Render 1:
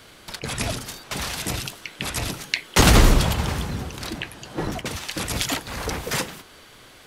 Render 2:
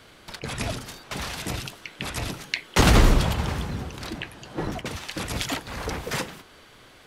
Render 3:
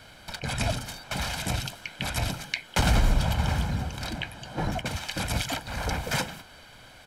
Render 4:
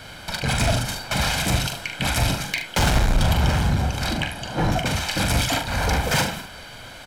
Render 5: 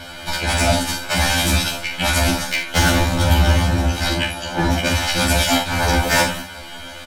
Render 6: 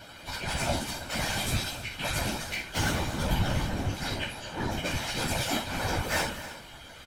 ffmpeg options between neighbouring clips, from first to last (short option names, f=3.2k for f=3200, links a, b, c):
-af "highshelf=f=5.1k:g=-6.5,volume=-2dB"
-af "aecho=1:1:1.3:0.58,alimiter=limit=-12dB:level=0:latency=1:release=428"
-filter_complex "[0:a]asoftclip=type=tanh:threshold=-24.5dB,asplit=2[a][b];[b]aecho=0:1:42|74:0.473|0.282[c];[a][c]amix=inputs=2:normalize=0,volume=9dB"
-filter_complex "[0:a]asplit=2[a][b];[b]adelay=15,volume=-5dB[c];[a][c]amix=inputs=2:normalize=0,afftfilt=real='re*2*eq(mod(b,4),0)':imag='im*2*eq(mod(b,4),0)':win_size=2048:overlap=0.75,volume=6.5dB"
-af "afftfilt=real='hypot(re,im)*cos(2*PI*random(0))':imag='hypot(re,im)*sin(2*PI*random(1))':win_size=512:overlap=0.75,aecho=1:1:248|314:0.141|0.141,volume=-6.5dB"